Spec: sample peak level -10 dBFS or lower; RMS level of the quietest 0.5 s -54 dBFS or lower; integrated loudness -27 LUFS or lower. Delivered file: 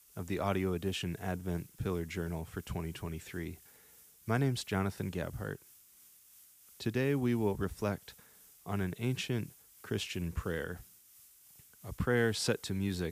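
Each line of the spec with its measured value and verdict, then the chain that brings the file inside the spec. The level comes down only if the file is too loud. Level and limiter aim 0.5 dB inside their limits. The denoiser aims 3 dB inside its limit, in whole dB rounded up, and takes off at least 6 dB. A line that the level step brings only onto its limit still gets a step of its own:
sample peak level -16.5 dBFS: OK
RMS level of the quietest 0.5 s -61 dBFS: OK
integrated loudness -35.5 LUFS: OK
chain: none

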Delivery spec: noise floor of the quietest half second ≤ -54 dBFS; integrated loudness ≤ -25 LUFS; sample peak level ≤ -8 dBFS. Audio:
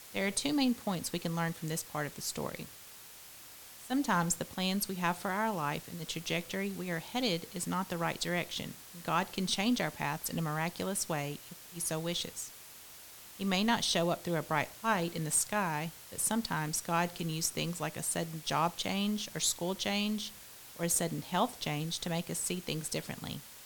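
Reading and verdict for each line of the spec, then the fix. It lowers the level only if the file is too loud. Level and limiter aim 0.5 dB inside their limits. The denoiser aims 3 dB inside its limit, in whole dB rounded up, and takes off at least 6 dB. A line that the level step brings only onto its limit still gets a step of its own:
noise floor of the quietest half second -52 dBFS: fail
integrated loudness -33.5 LUFS: OK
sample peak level -15.0 dBFS: OK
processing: denoiser 6 dB, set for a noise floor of -52 dBFS

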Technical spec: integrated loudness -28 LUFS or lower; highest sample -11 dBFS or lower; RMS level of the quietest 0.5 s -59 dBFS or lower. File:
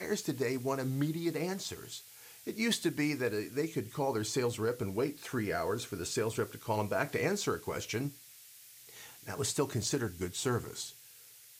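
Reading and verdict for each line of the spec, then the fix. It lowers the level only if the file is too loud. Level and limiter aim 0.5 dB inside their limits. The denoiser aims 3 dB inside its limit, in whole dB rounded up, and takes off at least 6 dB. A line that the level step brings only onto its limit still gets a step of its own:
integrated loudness -34.5 LUFS: OK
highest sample -16.5 dBFS: OK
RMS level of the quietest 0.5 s -56 dBFS: fail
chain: denoiser 6 dB, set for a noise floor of -56 dBFS

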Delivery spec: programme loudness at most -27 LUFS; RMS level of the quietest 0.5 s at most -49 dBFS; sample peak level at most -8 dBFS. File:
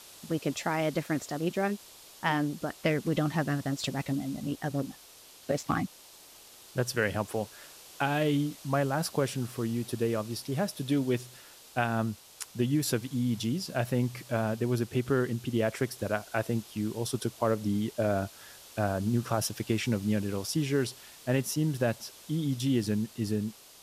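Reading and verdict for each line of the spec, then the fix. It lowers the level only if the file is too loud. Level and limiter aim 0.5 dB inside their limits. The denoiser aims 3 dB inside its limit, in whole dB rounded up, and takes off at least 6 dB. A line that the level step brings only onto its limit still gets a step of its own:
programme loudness -31.0 LUFS: OK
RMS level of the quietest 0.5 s -53 dBFS: OK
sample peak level -13.5 dBFS: OK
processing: none

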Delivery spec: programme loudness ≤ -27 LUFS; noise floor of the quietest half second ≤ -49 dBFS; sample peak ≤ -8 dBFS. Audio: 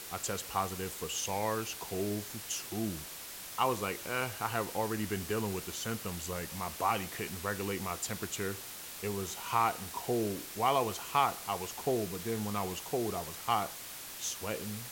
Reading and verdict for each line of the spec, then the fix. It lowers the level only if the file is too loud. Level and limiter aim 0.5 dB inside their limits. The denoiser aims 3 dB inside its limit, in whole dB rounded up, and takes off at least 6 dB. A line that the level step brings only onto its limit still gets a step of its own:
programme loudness -35.0 LUFS: OK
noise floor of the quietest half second -45 dBFS: fail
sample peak -14.0 dBFS: OK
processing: denoiser 7 dB, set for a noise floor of -45 dBFS

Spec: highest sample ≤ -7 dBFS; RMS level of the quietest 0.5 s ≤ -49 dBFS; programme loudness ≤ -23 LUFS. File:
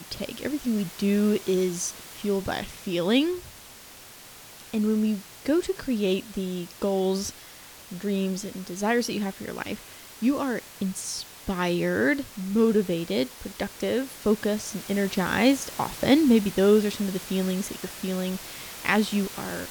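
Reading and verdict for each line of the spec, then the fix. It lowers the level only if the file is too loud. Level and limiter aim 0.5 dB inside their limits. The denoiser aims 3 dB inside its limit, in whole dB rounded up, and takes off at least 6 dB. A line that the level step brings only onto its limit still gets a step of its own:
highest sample -5.5 dBFS: fail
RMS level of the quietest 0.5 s -47 dBFS: fail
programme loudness -26.5 LUFS: OK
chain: denoiser 6 dB, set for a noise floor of -47 dBFS; limiter -7.5 dBFS

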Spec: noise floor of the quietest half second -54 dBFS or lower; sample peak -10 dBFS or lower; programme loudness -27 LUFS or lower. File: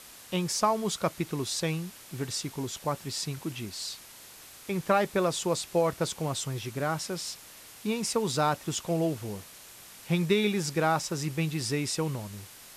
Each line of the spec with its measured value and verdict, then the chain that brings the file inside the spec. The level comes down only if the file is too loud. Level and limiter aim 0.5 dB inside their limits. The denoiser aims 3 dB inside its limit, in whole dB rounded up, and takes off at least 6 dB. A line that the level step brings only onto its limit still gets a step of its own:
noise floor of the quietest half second -49 dBFS: fail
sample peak -11.5 dBFS: OK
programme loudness -30.0 LUFS: OK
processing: denoiser 8 dB, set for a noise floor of -49 dBFS

